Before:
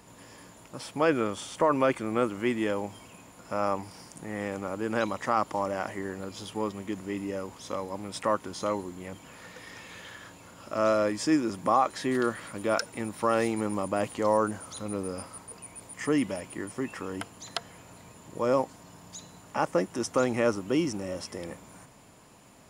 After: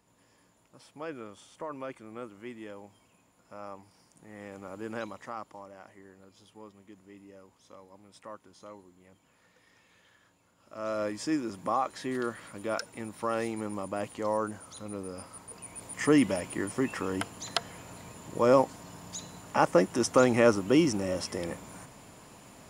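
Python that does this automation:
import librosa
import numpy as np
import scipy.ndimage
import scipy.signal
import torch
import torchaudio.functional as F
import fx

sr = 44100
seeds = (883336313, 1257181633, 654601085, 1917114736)

y = fx.gain(x, sr, db=fx.line((4.05, -15.0), (4.86, -7.0), (5.68, -18.0), (10.58, -18.0), (11.03, -5.5), (15.11, -5.5), (16.01, 3.5)))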